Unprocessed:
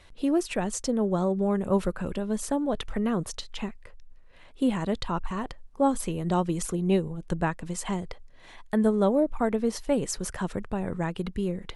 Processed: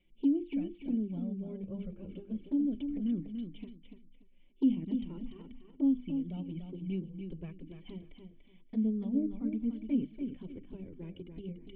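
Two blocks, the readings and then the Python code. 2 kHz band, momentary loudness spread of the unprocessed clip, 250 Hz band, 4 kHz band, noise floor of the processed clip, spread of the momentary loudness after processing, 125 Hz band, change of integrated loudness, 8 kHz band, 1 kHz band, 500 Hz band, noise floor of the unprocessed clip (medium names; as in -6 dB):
under -20 dB, 9 LU, -4.5 dB, under -15 dB, -59 dBFS, 16 LU, -10.5 dB, -7.0 dB, under -40 dB, under -30 dB, -19.0 dB, -50 dBFS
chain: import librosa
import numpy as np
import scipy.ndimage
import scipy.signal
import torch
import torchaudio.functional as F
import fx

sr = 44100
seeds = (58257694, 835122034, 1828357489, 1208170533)

p1 = fx.hum_notches(x, sr, base_hz=50, count=7)
p2 = fx.level_steps(p1, sr, step_db=15)
p3 = p1 + F.gain(torch.from_numpy(p2), -2.5).numpy()
p4 = fx.formant_cascade(p3, sr, vowel='i')
p5 = fx.env_flanger(p4, sr, rest_ms=5.7, full_db=-23.0)
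p6 = p5 + fx.echo_feedback(p5, sr, ms=290, feedback_pct=24, wet_db=-7.0, dry=0)
y = F.gain(torch.from_numpy(p6), -2.0).numpy()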